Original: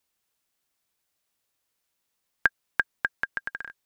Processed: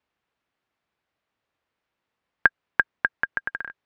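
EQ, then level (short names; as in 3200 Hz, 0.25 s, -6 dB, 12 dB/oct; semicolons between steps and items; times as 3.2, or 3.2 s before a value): HPF 43 Hz; LPF 2300 Hz 12 dB/oct; +5.0 dB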